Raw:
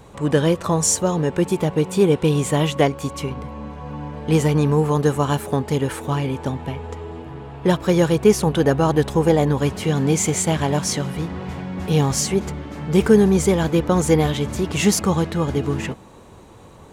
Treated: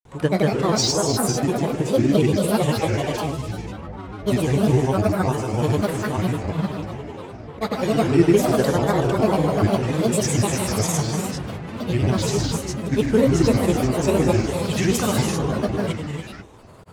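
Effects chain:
reverb whose tail is shaped and stops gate 490 ms flat, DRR −0.5 dB
granular cloud, pitch spread up and down by 7 semitones
level −3 dB

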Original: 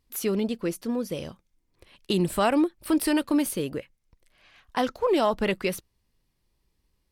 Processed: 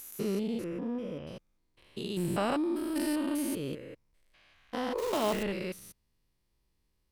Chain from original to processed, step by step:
spectrum averaged block by block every 200 ms
0:00.64–0:01.27: Savitzky-Golay smoothing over 25 samples
0:04.98–0:05.43: log-companded quantiser 4 bits
level −2.5 dB

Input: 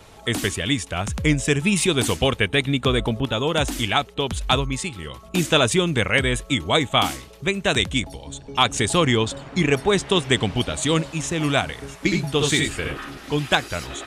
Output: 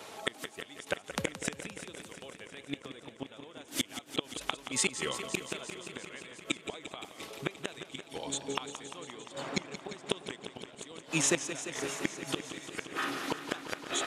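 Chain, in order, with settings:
high-pass filter 280 Hz 12 dB per octave
gate with flip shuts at −16 dBFS, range −30 dB
feedback echo with a swinging delay time 174 ms, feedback 80%, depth 78 cents, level −11 dB
level +1.5 dB

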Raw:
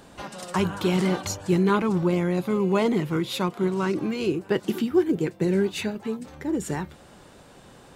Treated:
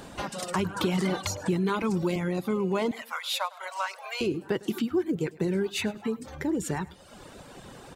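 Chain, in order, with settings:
0:02.91–0:04.21: Butterworth high-pass 560 Hz 72 dB per octave
reverb reduction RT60 0.78 s
in parallel at −1.5 dB: brickwall limiter −19 dBFS, peak gain reduction 8 dB
on the sum: downward compressor 2 to 1, threshold −30 dBFS, peak gain reduction 10 dB
on a send: repeating echo 104 ms, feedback 32%, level −21 dB
0:00.76–0:02.16: on the sum: multiband upward and downward compressor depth 70%

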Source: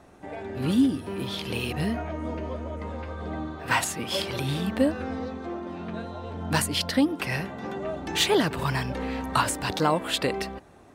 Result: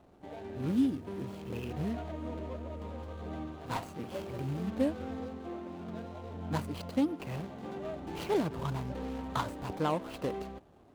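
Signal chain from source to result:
running median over 25 samples
level −6.5 dB

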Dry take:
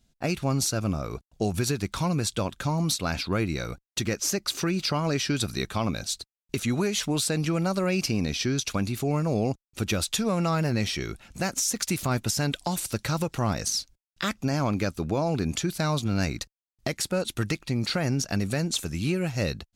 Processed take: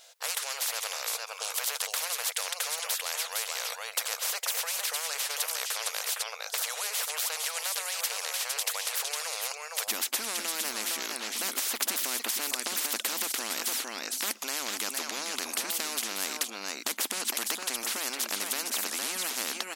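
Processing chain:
linear-phase brick-wall high-pass 460 Hz, from 0:09.87 230 Hz
single-tap delay 459 ms −13.5 dB
every bin compressed towards the loudest bin 10 to 1
level +6 dB

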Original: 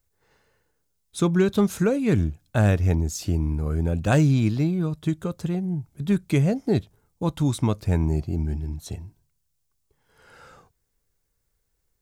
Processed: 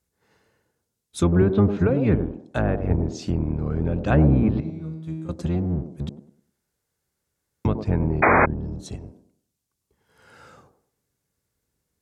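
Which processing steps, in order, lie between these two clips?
sub-octave generator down 1 octave, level +2 dB
0:04.60–0:05.29: tuned comb filter 160 Hz, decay 1 s, harmonics all, mix 90%
0:06.09–0:07.65: fill with room tone
0:08.30–0:08.81: parametric band 2,300 Hz −14 dB 0.4 octaves
delay with a band-pass on its return 101 ms, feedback 31%, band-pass 410 Hz, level −6 dB
0:08.22–0:08.46: sound drawn into the spectrogram noise 210–2,500 Hz −14 dBFS
treble cut that deepens with the level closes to 1,600 Hz, closed at −11.5 dBFS
0:02.15–0:02.90: parametric band 120 Hz −6.5 dB 2.2 octaves
treble cut that deepens with the level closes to 2,900 Hz, closed at −14.5 dBFS
high-pass filter 88 Hz 12 dB per octave

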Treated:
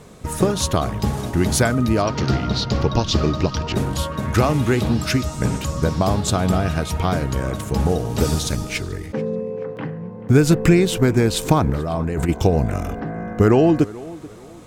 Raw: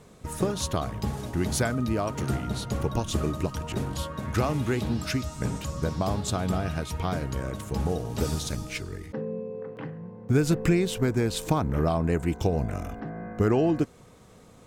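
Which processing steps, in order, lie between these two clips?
0:01.97–0:03.75: high shelf with overshoot 6,900 Hz −13 dB, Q 3
0:11.64–0:12.29: compressor whose output falls as the input rises −30 dBFS, ratio −1
on a send: tape delay 432 ms, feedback 37%, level −18 dB, low-pass 2,900 Hz
on the sum: level +8.5 dB

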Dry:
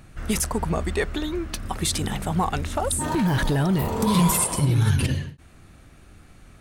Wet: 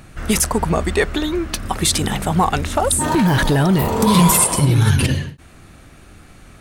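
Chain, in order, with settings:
low-shelf EQ 160 Hz −4 dB
level +8 dB

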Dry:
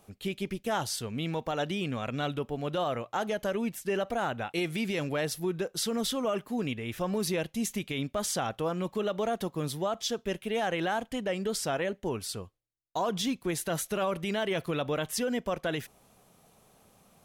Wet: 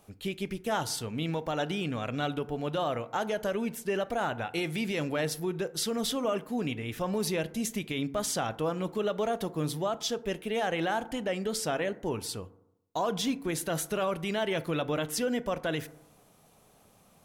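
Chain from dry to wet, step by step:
feedback delay network reverb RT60 0.82 s, low-frequency decay 1.05×, high-frequency decay 0.3×, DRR 13.5 dB

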